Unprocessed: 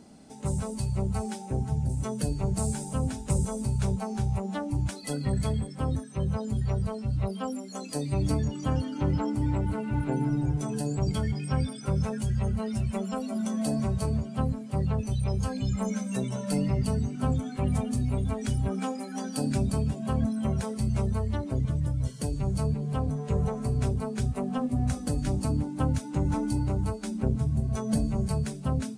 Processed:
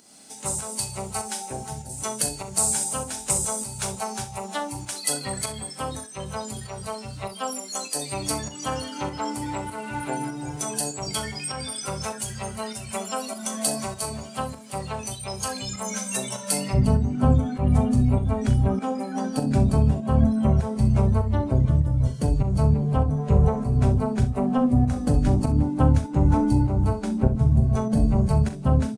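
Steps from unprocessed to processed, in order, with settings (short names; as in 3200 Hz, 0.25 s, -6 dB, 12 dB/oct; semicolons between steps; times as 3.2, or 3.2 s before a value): dynamic EQ 770 Hz, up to +5 dB, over -46 dBFS, Q 0.83; pump 99 bpm, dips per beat 1, -8 dB, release 0.264 s; tilt +4 dB/oct, from 16.73 s -1.5 dB/oct; early reflections 40 ms -11.5 dB, 65 ms -13.5 dB; gain +3 dB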